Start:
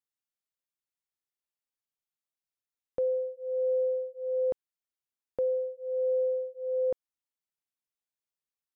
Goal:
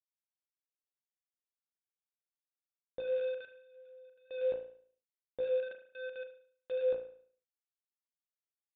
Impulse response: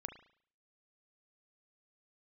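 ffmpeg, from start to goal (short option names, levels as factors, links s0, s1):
-filter_complex "[0:a]asettb=1/sr,asplit=3[s0][s1][s2];[s0]atrim=end=5.714[s3];[s1]atrim=start=5.71:end=6.7,asetpts=PTS-STARTPTS,afade=t=in:d=0.004:c=qsin,afade=t=out:st=0.986:d=0.004:c=qsin,lowshelf=f=630:t=q:w=3:g=-12[s4];[s2]atrim=start=6.696[s5];[s3][s4]acrossfade=d=0.004:c1=hsin:c2=qsin[s6];[s6][s5]acrossfade=d=0.004:c1=qsin:c2=hsin,flanger=delay=15.5:depth=3.2:speed=1.5,acrusher=bits=6:mix=0:aa=0.000001,asettb=1/sr,asplit=3[s7][s8][s9];[s7]atrim=end=3.464[s10];[s8]atrim=start=3.46:end=4.31,asetpts=PTS-STARTPTS,afade=t=in:d=0.004:c=qsin,afade=t=out:st=0.846:d=0.004:c=qsin,aeval=exprs='0.00316*sin(PI/2*5.62*val(0)/0.00316)':c=same[s11];[s9]atrim=start=4.306[s12];[s10][s11]acrossfade=d=0.004:c1=hsin:c2=qsin[s13];[s13][s12]acrossfade=d=0.004:c1=qsin:c2=hsin[s14];[1:a]atrim=start_sample=2205[s15];[s14][s15]afir=irnorm=-1:irlink=0,aresample=8000,aresample=44100"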